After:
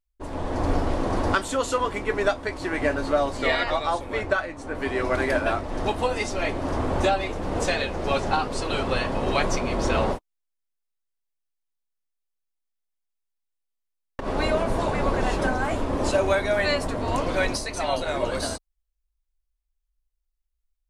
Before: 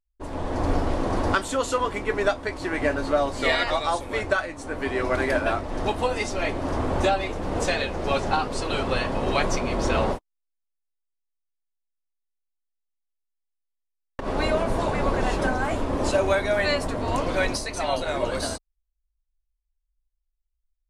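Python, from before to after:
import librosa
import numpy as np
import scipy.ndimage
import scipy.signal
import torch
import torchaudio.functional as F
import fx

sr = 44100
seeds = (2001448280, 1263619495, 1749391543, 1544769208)

y = fx.high_shelf(x, sr, hz=5200.0, db=-8.5, at=(3.37, 4.75))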